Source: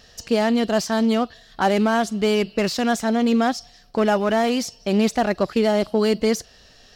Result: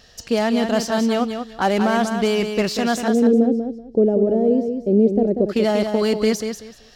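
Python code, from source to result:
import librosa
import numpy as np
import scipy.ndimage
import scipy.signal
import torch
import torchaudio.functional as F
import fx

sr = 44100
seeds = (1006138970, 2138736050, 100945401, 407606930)

y = fx.curve_eq(x, sr, hz=(120.0, 480.0, 1100.0), db=(0, 7, -28), at=(3.08, 5.49))
y = fx.echo_feedback(y, sr, ms=190, feedback_pct=21, wet_db=-7)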